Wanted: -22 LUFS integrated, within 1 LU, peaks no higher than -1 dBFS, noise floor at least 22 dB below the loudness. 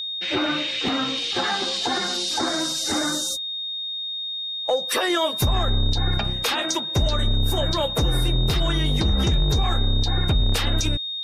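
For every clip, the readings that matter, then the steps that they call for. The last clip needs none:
steady tone 3.7 kHz; tone level -27 dBFS; loudness -22.5 LUFS; peak level -12.0 dBFS; loudness target -22.0 LUFS
-> band-stop 3.7 kHz, Q 30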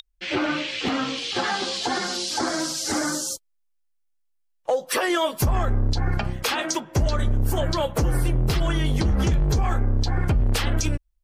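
steady tone not found; loudness -24.5 LUFS; peak level -13.0 dBFS; loudness target -22.0 LUFS
-> trim +2.5 dB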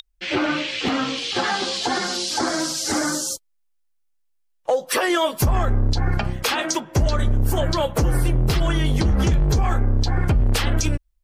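loudness -22.0 LUFS; peak level -10.5 dBFS; noise floor -66 dBFS

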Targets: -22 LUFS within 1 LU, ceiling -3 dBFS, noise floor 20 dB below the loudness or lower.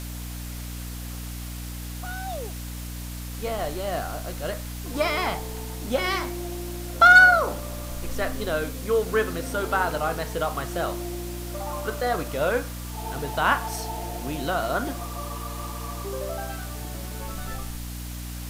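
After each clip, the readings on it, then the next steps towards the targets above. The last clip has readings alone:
hum 60 Hz; highest harmonic 300 Hz; hum level -33 dBFS; noise floor -35 dBFS; noise floor target -46 dBFS; loudness -26.0 LUFS; peak level -6.0 dBFS; loudness target -22.0 LUFS
-> hum notches 60/120/180/240/300 Hz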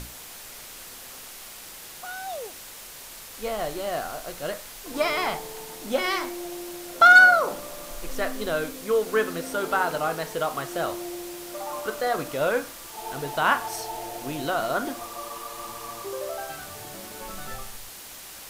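hum not found; noise floor -43 dBFS; noise floor target -45 dBFS
-> noise print and reduce 6 dB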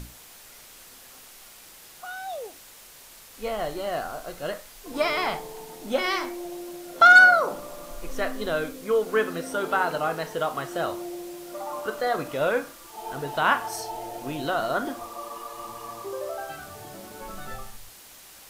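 noise floor -48 dBFS; loudness -24.0 LUFS; peak level -6.5 dBFS; loudness target -22.0 LUFS
-> trim +2 dB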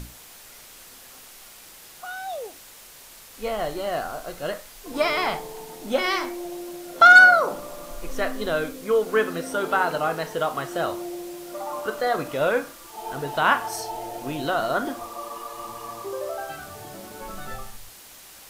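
loudness -22.0 LUFS; peak level -4.5 dBFS; noise floor -46 dBFS

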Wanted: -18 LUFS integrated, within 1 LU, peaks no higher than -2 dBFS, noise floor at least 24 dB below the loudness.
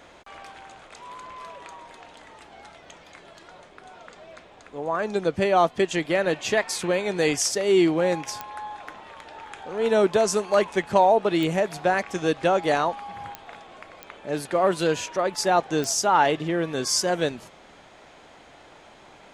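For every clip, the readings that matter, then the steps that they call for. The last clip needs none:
clicks found 5; loudness -23.0 LUFS; peak level -5.5 dBFS; loudness target -18.0 LUFS
-> de-click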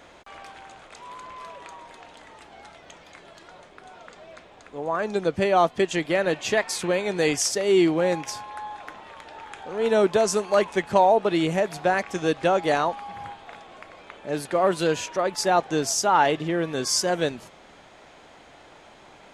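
clicks found 0; loudness -23.0 LUFS; peak level -5.5 dBFS; loudness target -18.0 LUFS
-> trim +5 dB; peak limiter -2 dBFS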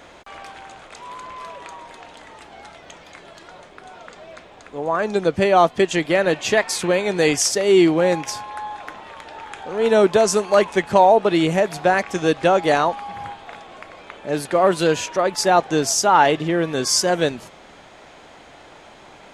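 loudness -18.0 LUFS; peak level -2.0 dBFS; noise floor -46 dBFS

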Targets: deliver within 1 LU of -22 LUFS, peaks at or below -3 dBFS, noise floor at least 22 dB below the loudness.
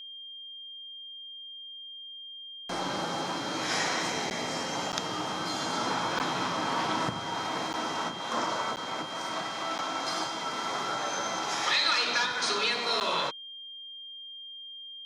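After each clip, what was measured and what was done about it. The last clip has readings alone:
dropouts 7; longest dropout 9.4 ms; steady tone 3.2 kHz; tone level -41 dBFS; loudness -31.0 LUFS; peak level -12.5 dBFS; loudness target -22.0 LUFS
-> interpolate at 4.30/4.92/6.19/7.73/8.76/9.78/13.00 s, 9.4 ms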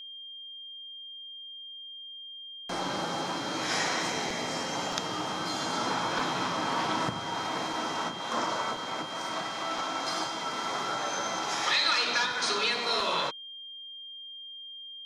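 dropouts 0; steady tone 3.2 kHz; tone level -41 dBFS
-> band-stop 3.2 kHz, Q 30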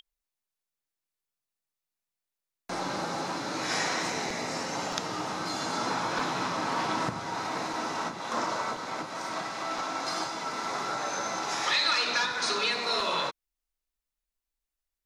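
steady tone not found; loudness -30.0 LUFS; peak level -12.5 dBFS; loudness target -22.0 LUFS
-> trim +8 dB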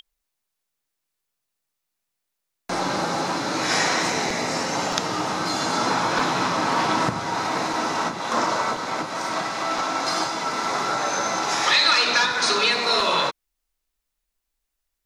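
loudness -22.0 LUFS; peak level -4.5 dBFS; noise floor -81 dBFS

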